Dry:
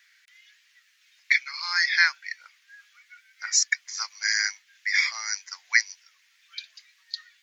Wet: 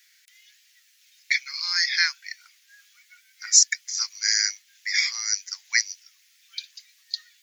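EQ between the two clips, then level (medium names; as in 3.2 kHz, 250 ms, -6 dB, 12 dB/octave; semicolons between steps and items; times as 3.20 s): high-pass 490 Hz; differentiator; +8.0 dB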